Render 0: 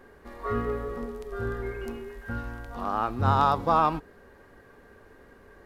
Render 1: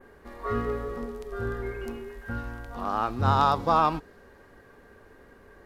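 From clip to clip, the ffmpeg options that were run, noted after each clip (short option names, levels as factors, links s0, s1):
-af "adynamicequalizer=threshold=0.00501:dfrequency=5200:dqfactor=0.89:tfrequency=5200:tqfactor=0.89:attack=5:release=100:ratio=0.375:range=2.5:mode=boostabove:tftype=bell"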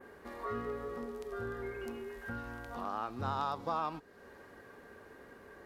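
-af "highpass=f=150:p=1,acompressor=threshold=0.00794:ratio=2"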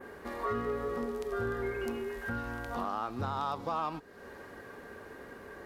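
-filter_complex "[0:a]asplit=2[s0][s1];[s1]volume=50.1,asoftclip=hard,volume=0.02,volume=0.398[s2];[s0][s2]amix=inputs=2:normalize=0,alimiter=level_in=1.5:limit=0.0631:level=0:latency=1:release=411,volume=0.668,volume=1.5"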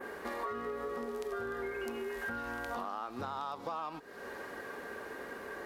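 -af "lowshelf=f=200:g=-11.5,acompressor=threshold=0.00891:ratio=6,equalizer=f=110:w=4.3:g=-5,volume=1.88"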